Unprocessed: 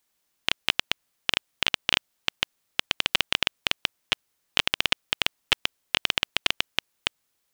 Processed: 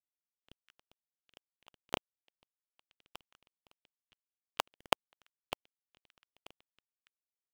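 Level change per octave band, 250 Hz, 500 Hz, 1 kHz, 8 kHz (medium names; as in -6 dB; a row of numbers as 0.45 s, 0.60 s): -11.0 dB, -6.0 dB, -7.5 dB, -15.5 dB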